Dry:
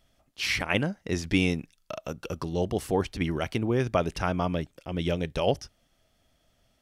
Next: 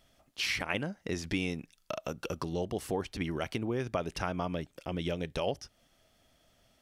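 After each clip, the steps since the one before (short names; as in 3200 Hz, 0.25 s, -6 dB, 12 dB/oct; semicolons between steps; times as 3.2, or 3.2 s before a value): compressor 2.5:1, threshold -35 dBFS, peak gain reduction 11 dB; low shelf 130 Hz -5.5 dB; gain +2.5 dB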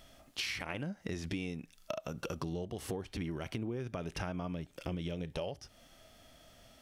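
harmonic-percussive split percussive -10 dB; compressor 10:1, threshold -46 dBFS, peak gain reduction 16 dB; gain +11 dB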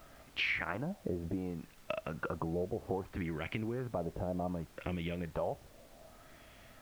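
LFO low-pass sine 0.65 Hz 560–2400 Hz; added noise pink -61 dBFS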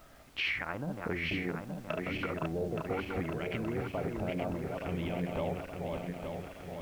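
regenerating reverse delay 0.436 s, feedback 74%, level -3.5 dB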